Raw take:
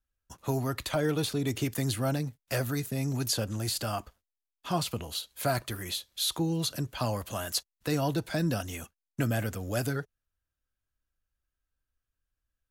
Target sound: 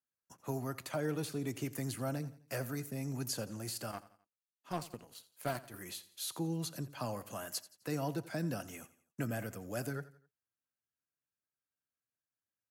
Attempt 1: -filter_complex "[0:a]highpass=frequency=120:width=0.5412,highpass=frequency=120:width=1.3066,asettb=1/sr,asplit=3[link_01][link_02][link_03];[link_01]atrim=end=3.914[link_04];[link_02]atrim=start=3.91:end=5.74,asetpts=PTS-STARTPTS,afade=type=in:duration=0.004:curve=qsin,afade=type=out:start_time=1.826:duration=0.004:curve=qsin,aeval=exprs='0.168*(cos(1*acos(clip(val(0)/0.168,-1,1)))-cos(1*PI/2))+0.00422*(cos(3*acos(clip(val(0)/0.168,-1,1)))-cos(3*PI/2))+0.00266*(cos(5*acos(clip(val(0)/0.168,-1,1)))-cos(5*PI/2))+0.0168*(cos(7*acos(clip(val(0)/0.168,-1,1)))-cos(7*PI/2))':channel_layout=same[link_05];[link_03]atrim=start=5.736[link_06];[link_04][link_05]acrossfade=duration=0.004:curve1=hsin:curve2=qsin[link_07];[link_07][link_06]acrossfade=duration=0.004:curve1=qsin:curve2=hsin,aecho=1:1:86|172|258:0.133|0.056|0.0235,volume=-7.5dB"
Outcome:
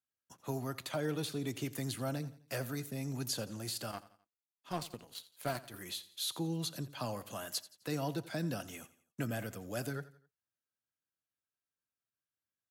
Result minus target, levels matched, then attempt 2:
4,000 Hz band +4.5 dB
-filter_complex "[0:a]highpass=frequency=120:width=0.5412,highpass=frequency=120:width=1.3066,equalizer=frequency=3600:width=2.5:gain=-8.5,asettb=1/sr,asplit=3[link_01][link_02][link_03];[link_01]atrim=end=3.914[link_04];[link_02]atrim=start=3.91:end=5.74,asetpts=PTS-STARTPTS,afade=type=in:duration=0.004:curve=qsin,afade=type=out:start_time=1.826:duration=0.004:curve=qsin,aeval=exprs='0.168*(cos(1*acos(clip(val(0)/0.168,-1,1)))-cos(1*PI/2))+0.00422*(cos(3*acos(clip(val(0)/0.168,-1,1)))-cos(3*PI/2))+0.00266*(cos(5*acos(clip(val(0)/0.168,-1,1)))-cos(5*PI/2))+0.0168*(cos(7*acos(clip(val(0)/0.168,-1,1)))-cos(7*PI/2))':channel_layout=same[link_05];[link_03]atrim=start=5.736[link_06];[link_04][link_05]acrossfade=duration=0.004:curve1=hsin:curve2=qsin[link_07];[link_07][link_06]acrossfade=duration=0.004:curve1=qsin:curve2=hsin,aecho=1:1:86|172|258:0.133|0.056|0.0235,volume=-7.5dB"

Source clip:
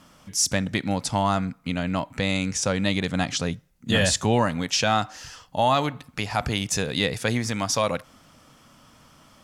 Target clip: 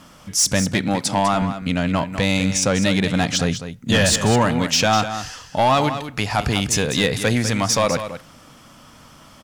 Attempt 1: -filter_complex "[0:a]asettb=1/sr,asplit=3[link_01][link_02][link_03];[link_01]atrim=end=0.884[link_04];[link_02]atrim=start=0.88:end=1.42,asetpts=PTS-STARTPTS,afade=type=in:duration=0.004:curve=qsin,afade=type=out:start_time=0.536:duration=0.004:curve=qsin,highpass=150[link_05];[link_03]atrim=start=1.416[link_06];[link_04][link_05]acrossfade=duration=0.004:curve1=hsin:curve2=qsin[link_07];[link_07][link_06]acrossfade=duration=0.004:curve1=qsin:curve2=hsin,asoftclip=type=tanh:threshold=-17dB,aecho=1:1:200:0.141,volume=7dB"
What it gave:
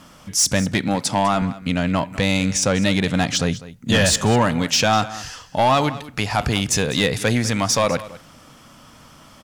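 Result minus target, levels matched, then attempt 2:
echo-to-direct −6.5 dB
-filter_complex "[0:a]asettb=1/sr,asplit=3[link_01][link_02][link_03];[link_01]atrim=end=0.884[link_04];[link_02]atrim=start=0.88:end=1.42,asetpts=PTS-STARTPTS,afade=type=in:duration=0.004:curve=qsin,afade=type=out:start_time=0.536:duration=0.004:curve=qsin,highpass=150[link_05];[link_03]atrim=start=1.416[link_06];[link_04][link_05]acrossfade=duration=0.004:curve1=hsin:curve2=qsin[link_07];[link_07][link_06]acrossfade=duration=0.004:curve1=qsin:curve2=hsin,asoftclip=type=tanh:threshold=-17dB,aecho=1:1:200:0.299,volume=7dB"

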